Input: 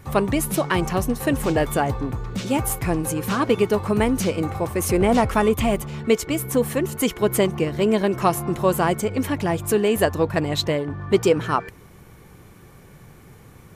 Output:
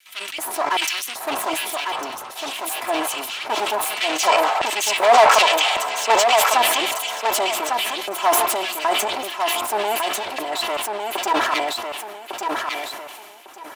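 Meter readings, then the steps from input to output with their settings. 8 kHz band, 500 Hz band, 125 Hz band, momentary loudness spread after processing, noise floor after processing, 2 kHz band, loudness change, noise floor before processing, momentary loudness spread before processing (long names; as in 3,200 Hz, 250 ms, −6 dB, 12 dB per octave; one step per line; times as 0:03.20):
+6.0 dB, −1.5 dB, below −25 dB, 13 LU, −39 dBFS, +7.0 dB, +2.0 dB, −47 dBFS, 5 LU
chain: lower of the sound and its delayed copy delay 3 ms
low-shelf EQ 270 Hz +8 dB
gain on a spectral selection 0:03.97–0:06.58, 410–8,400 Hz +10 dB
soft clipping −11 dBFS, distortion −9 dB
auto-filter high-pass square 1.3 Hz 810–2,900 Hz
repeating echo 1,152 ms, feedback 21%, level −5 dB
level that may fall only so fast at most 30 dB per second
level −1 dB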